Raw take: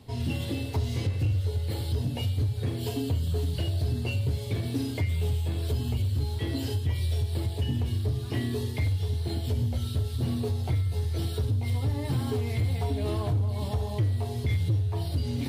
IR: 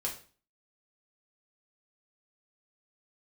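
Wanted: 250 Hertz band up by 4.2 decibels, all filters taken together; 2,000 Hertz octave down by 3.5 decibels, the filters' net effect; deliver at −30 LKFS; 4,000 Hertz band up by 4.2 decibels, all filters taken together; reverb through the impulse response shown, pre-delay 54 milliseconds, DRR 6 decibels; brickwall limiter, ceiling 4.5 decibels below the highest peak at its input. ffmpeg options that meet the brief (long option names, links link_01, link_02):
-filter_complex "[0:a]equalizer=frequency=250:width_type=o:gain=5,equalizer=frequency=2000:width_type=o:gain=-7.5,equalizer=frequency=4000:width_type=o:gain=7.5,alimiter=limit=-20.5dB:level=0:latency=1,asplit=2[link_01][link_02];[1:a]atrim=start_sample=2205,adelay=54[link_03];[link_02][link_03]afir=irnorm=-1:irlink=0,volume=-8.5dB[link_04];[link_01][link_04]amix=inputs=2:normalize=0,volume=-2dB"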